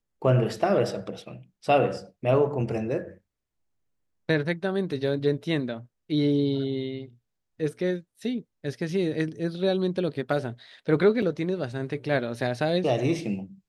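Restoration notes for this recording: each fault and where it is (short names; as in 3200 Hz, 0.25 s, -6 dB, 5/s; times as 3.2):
11.22 gap 4.8 ms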